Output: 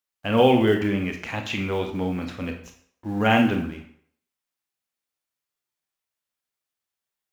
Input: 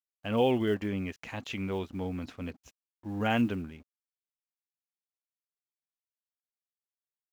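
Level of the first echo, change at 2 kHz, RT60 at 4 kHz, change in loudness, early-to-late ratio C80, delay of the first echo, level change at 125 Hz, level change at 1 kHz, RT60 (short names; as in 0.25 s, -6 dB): none, +10.5 dB, 0.50 s, +9.0 dB, 11.5 dB, none, +8.0 dB, +10.0 dB, 0.60 s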